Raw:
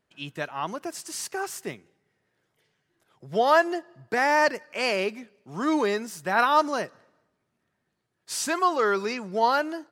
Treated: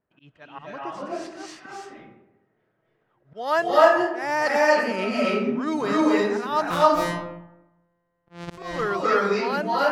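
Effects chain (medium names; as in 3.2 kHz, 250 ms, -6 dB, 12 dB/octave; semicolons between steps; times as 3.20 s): 6.70–8.58 s: sorted samples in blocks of 256 samples; level-controlled noise filter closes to 1.5 kHz, open at -20 dBFS; 4.54–5.53 s: small resonant body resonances 240/1300 Hz, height 17 dB, ringing for 90 ms; slow attack 202 ms; reverberation RT60 0.90 s, pre-delay 218 ms, DRR -6.5 dB; trim -3 dB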